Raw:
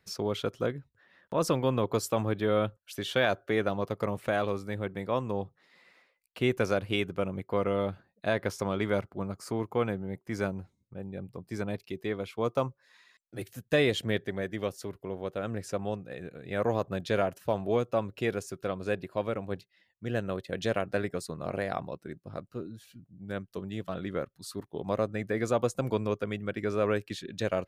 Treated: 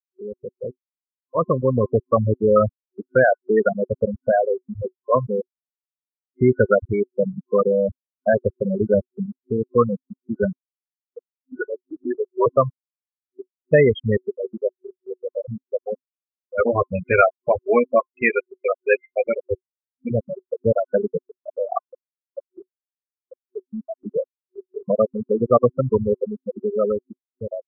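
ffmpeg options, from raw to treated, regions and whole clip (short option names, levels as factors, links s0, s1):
-filter_complex "[0:a]asettb=1/sr,asplit=3[s0][s1][s2];[s0]atrim=end=11.104[s3];[s1]atrim=start=11.1:end=12.46,asetpts=PTS-STARTPTS,afade=t=in:d=0.004:c=qsin,afade=t=out:st=1.356:d=0.004:c=qsin,afreqshift=-67,asplit=2[s4][s5];[s5]highpass=f=720:p=1,volume=4.47,asoftclip=type=tanh:threshold=0.133[s6];[s4][s6]amix=inputs=2:normalize=0,lowpass=f=5300:p=1,volume=0.501[s7];[s2]atrim=start=12.456[s8];[s3][s7]acrossfade=d=0.004:c1=hsin:c2=qsin[s9];[s9][s8]acrossfade=d=0.004:c1=qsin:c2=hsin,asettb=1/sr,asplit=3[s10][s11][s12];[s10]atrim=end=16.584[s13];[s11]atrim=start=16.58:end=20.12,asetpts=PTS-STARTPTS,afade=t=in:d=0.004:c=qsin,afade=t=out:st=3.536:d=0.004:c=qsin,lowpass=f=2400:t=q:w=9.3,asplit=2[s14][s15];[s15]adelay=12,volume=0.562[s16];[s14][s16]amix=inputs=2:normalize=0,atrim=end_sample=156114,aecho=1:1:75:0.112,atrim=end_sample=156114[s17];[s12]atrim=start=20.116[s18];[s13][s17]acrossfade=d=0.004:c1=hsin:c2=qsin[s19];[s19][s18]acrossfade=d=0.004:c1=qsin:c2=hsin,afftfilt=real='re*gte(hypot(re,im),0.158)':imag='im*gte(hypot(re,im),0.158)':win_size=1024:overlap=0.75,superequalizer=6b=0.447:10b=2.51:12b=0.282:13b=0.355,dynaudnorm=f=620:g=5:m=4.73"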